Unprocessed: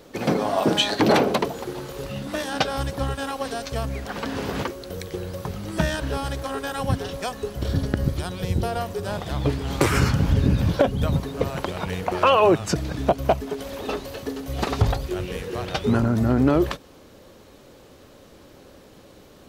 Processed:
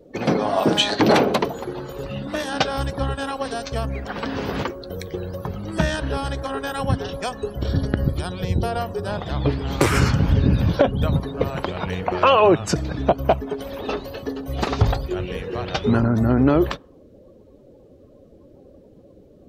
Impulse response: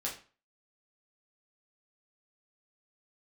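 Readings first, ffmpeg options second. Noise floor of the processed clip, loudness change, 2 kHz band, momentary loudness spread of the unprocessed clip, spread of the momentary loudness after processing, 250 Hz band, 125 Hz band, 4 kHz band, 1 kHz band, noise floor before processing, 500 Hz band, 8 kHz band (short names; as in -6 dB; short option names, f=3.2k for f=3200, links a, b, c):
-50 dBFS, +2.0 dB, +2.0 dB, 12 LU, 12 LU, +2.0 dB, +2.0 dB, +1.5 dB, +2.0 dB, -49 dBFS, +2.0 dB, 0.0 dB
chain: -af "afftdn=nr=21:nf=-45,volume=2dB"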